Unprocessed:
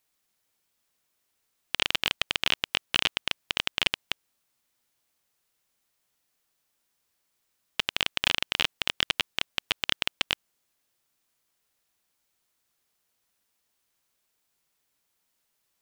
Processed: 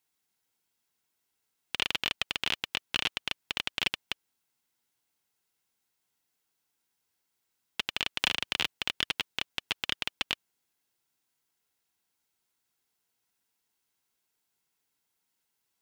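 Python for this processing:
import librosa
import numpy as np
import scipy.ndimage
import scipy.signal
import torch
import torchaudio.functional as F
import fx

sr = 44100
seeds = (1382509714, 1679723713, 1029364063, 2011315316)

y = fx.notch_comb(x, sr, f0_hz=600.0)
y = fx.band_squash(y, sr, depth_pct=100, at=(8.19, 8.71))
y = y * 10.0 ** (-3.0 / 20.0)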